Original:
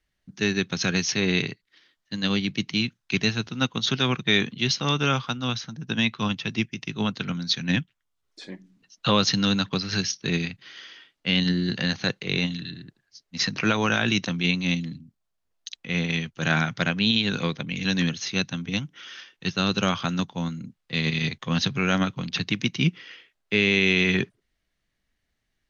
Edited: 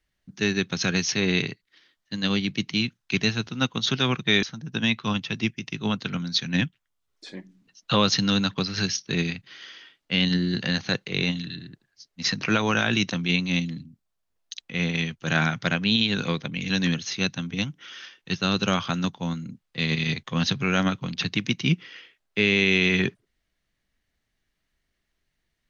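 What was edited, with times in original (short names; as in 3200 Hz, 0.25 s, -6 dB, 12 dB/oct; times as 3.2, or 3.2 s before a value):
4.43–5.58 cut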